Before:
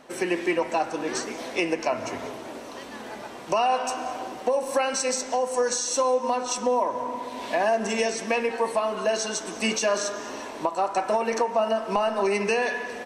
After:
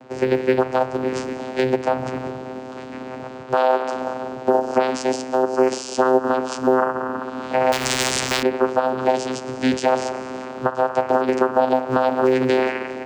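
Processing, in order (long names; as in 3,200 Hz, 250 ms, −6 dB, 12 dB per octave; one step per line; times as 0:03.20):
channel vocoder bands 8, saw 129 Hz
0:03.43–0:03.93: bass and treble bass −9 dB, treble −5 dB
floating-point word with a short mantissa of 6 bits
0:07.72–0:08.43: every bin compressed towards the loudest bin 4 to 1
level +6.5 dB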